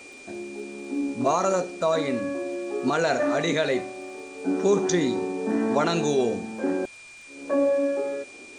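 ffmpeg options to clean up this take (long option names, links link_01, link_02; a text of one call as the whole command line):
ffmpeg -i in.wav -af "adeclick=threshold=4,bandreject=frequency=2400:width=30,afwtdn=0.0035" out.wav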